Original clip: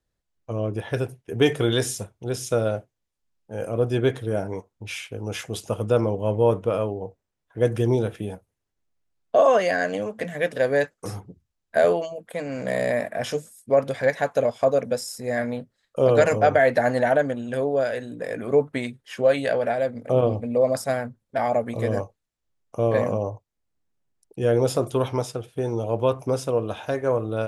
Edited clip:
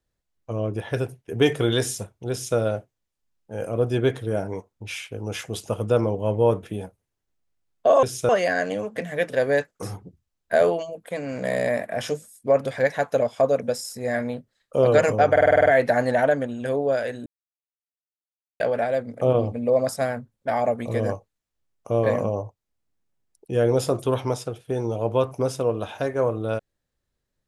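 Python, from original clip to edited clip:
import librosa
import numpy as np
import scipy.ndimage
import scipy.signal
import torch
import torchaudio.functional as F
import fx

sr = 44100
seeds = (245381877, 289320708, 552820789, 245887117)

y = fx.edit(x, sr, fx.duplicate(start_s=2.31, length_s=0.26, to_s=9.52),
    fx.cut(start_s=6.63, length_s=1.49),
    fx.stutter(start_s=16.54, slice_s=0.05, count=8),
    fx.silence(start_s=18.14, length_s=1.34), tone=tone)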